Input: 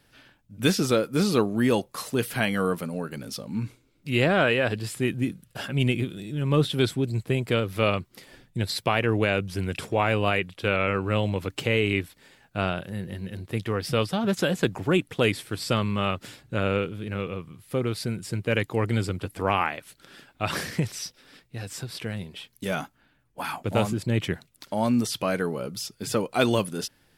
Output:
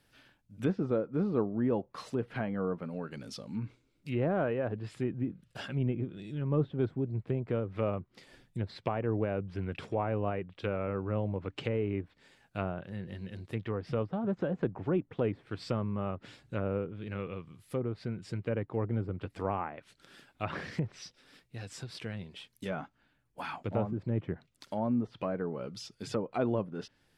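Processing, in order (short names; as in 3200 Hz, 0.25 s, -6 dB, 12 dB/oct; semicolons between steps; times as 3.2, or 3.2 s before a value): treble ducked by the level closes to 950 Hz, closed at -22 dBFS; gain -7 dB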